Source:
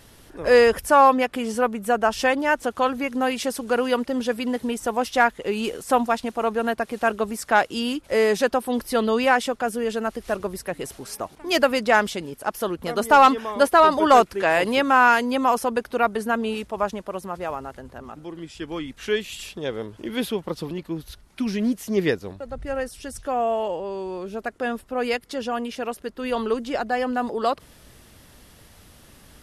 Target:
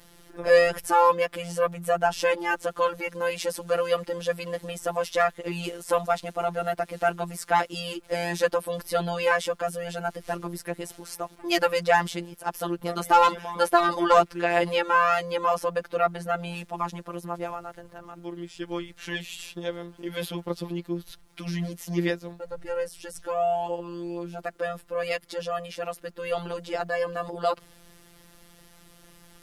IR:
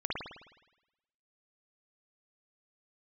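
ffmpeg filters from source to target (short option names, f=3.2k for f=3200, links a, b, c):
-filter_complex "[0:a]asettb=1/sr,asplit=3[a][b][c];[a]atrim=end=14.034[d];[b]atrim=start=14.03:end=16.39,asetpts=PTS-STARTPTS,afade=t=in:d=0.004:c=qsin,afade=t=out:st=2.356:d=0.004:c=qsin,highshelf=f=7.7k:g=-7.5[e];[c]atrim=start=16.386[f];[d][e]acrossfade=d=0.004:c1=hsin:c2=qsin[g];[g][f]acrossfade=d=0.004:c1=qsin:c2=hsin,afftfilt=real='hypot(re,im)*cos(PI*b)':imag='0':win_size=1024:overlap=0.75,acrusher=bits=11:mix=0:aa=0.000001"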